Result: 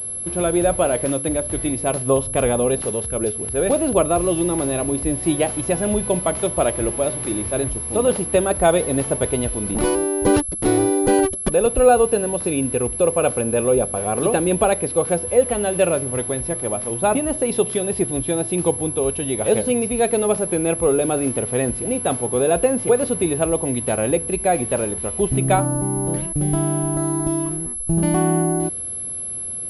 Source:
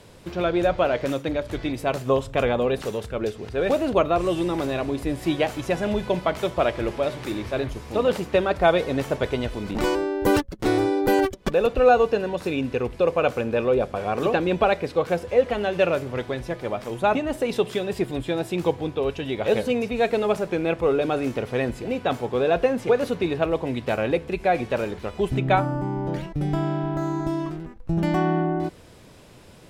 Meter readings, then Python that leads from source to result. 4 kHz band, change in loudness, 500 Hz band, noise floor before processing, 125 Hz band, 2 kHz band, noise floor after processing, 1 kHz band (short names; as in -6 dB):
-0.5 dB, +4.5 dB, +3.0 dB, -44 dBFS, +4.5 dB, -1.0 dB, -29 dBFS, +1.5 dB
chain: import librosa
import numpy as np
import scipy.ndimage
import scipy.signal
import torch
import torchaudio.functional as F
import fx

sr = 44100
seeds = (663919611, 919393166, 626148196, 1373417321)

y = fx.peak_eq(x, sr, hz=1800.0, db=-6.0, octaves=2.2)
y = fx.pwm(y, sr, carrier_hz=11000.0)
y = F.gain(torch.from_numpy(y), 4.5).numpy()